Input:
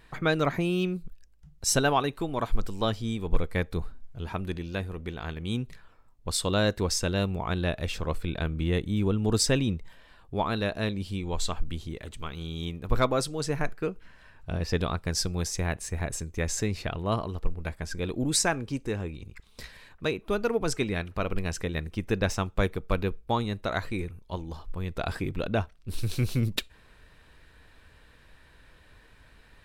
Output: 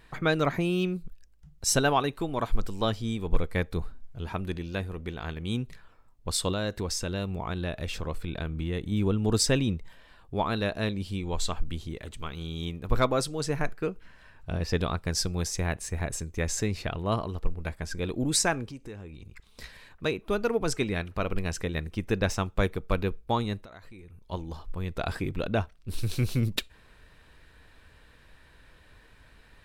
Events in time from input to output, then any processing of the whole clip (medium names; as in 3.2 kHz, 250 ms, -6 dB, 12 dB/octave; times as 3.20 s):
6.52–8.92 s: compression 2:1, threshold -29 dBFS
18.66–19.62 s: compression 2.5:1, threshold -42 dBFS
23.58–24.27 s: compression, threshold -45 dBFS